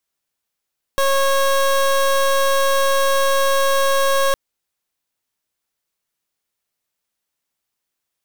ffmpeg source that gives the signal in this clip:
ffmpeg -f lavfi -i "aevalsrc='0.158*(2*lt(mod(547*t,1),0.23)-1)':duration=3.36:sample_rate=44100" out.wav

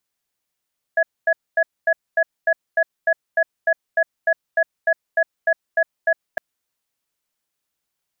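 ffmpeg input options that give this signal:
ffmpeg -f lavfi -i "aevalsrc='0.158*(sin(2*PI*655*t)+sin(2*PI*1680*t))*clip(min(mod(t,0.3),0.06-mod(t,0.3))/0.005,0,1)':duration=5.41:sample_rate=44100" out.wav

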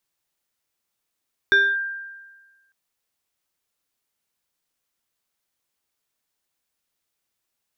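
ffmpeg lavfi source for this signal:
ffmpeg -f lavfi -i "aevalsrc='0.282*pow(10,-3*t/1.36)*sin(2*PI*1590*t+0.52*clip(1-t/0.25,0,1)*sin(2*PI*1.25*1590*t))':duration=1.2:sample_rate=44100" out.wav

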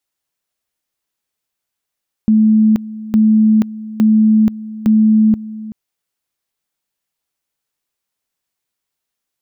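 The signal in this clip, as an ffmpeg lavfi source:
ffmpeg -f lavfi -i "aevalsrc='pow(10,(-7-17.5*gte(mod(t,0.86),0.48))/20)*sin(2*PI*217*t)':duration=3.44:sample_rate=44100" out.wav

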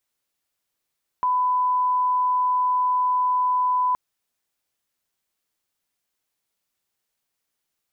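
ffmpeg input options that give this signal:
ffmpeg -f lavfi -i "sine=frequency=1000:duration=2.72:sample_rate=44100,volume=0.06dB" out.wav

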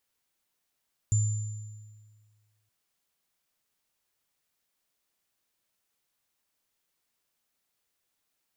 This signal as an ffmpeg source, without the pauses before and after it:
ffmpeg -f lavfi -i "aevalsrc='0.1*pow(10,-3*t/1.69)*sin(2*PI*106*t)+0.0355*pow(10,-3*t/1.34)*sin(2*PI*7160*t)':duration=1.57:sample_rate=44100" out.wav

